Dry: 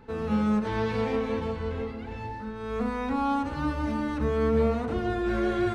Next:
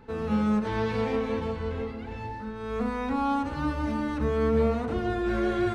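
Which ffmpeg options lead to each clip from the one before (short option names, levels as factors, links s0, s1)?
-af anull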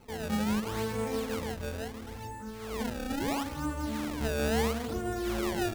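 -af "acrusher=samples=24:mix=1:aa=0.000001:lfo=1:lforange=38.4:lforate=0.74,volume=0.562"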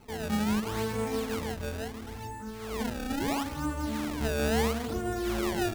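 -af "bandreject=f=520:w=12,volume=1.19"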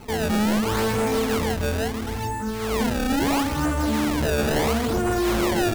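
-af "aeval=exprs='0.141*sin(PI/2*3.16*val(0)/0.141)':c=same,volume=0.841"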